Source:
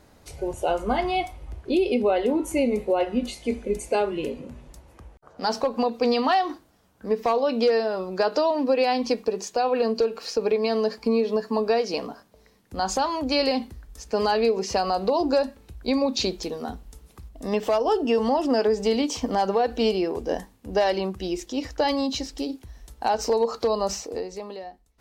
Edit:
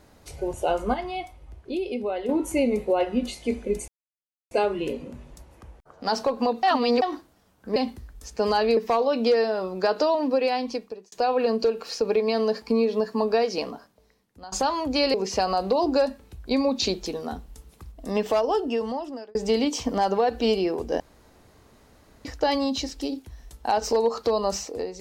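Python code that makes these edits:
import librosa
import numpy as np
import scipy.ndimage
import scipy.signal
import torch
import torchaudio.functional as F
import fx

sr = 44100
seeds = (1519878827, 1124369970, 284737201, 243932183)

y = fx.edit(x, sr, fx.clip_gain(start_s=0.94, length_s=1.35, db=-7.0),
    fx.insert_silence(at_s=3.88, length_s=0.63),
    fx.reverse_span(start_s=6.0, length_s=0.39),
    fx.fade_out_span(start_s=8.35, length_s=1.13, curve='qsin'),
    fx.fade_out_to(start_s=11.9, length_s=0.98, floor_db=-19.5),
    fx.move(start_s=13.5, length_s=1.01, to_s=7.13),
    fx.fade_out_span(start_s=17.73, length_s=0.99),
    fx.room_tone_fill(start_s=20.37, length_s=1.25), tone=tone)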